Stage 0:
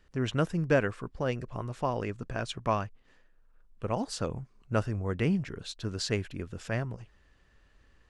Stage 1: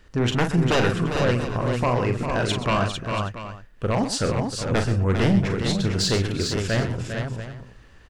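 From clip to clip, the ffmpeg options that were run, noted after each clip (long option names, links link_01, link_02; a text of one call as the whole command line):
ffmpeg -i in.wav -filter_complex "[0:a]aeval=exprs='0.251*sin(PI/2*3.55*val(0)/0.251)':channel_layout=same,asplit=2[link_01][link_02];[link_02]aecho=0:1:41|127|401|450|685|773:0.447|0.237|0.398|0.531|0.224|0.1[link_03];[link_01][link_03]amix=inputs=2:normalize=0,volume=-4.5dB" out.wav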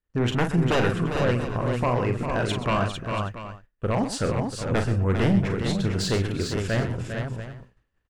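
ffmpeg -i in.wav -af "equalizer=frequency=5200:width=0.97:gain=-5.5,agate=range=-33dB:threshold=-34dB:ratio=3:detection=peak,volume=-1.5dB" out.wav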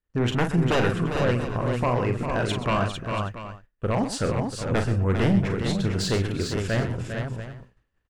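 ffmpeg -i in.wav -af anull out.wav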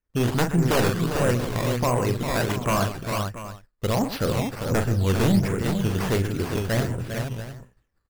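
ffmpeg -i in.wav -af "adynamicsmooth=sensitivity=5.5:basefreq=5700,acrusher=samples=10:mix=1:aa=0.000001:lfo=1:lforange=10:lforate=1.4,volume=1dB" out.wav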